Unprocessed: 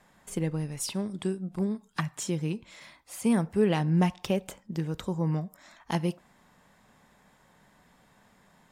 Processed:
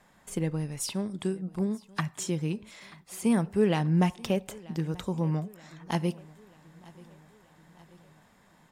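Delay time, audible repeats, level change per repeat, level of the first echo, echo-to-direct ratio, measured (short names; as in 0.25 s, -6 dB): 0.934 s, 3, -5.0 dB, -22.5 dB, -21.0 dB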